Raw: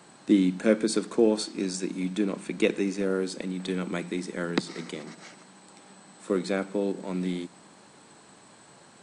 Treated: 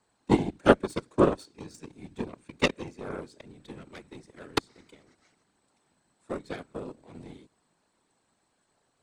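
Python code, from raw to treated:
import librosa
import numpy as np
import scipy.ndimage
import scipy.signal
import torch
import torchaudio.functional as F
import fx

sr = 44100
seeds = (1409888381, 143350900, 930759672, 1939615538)

y = fx.cheby_harmonics(x, sr, harmonics=(3,), levels_db=(-10,), full_scale_db=-8.5)
y = fx.whisperise(y, sr, seeds[0])
y = F.gain(torch.from_numpy(y), 6.0).numpy()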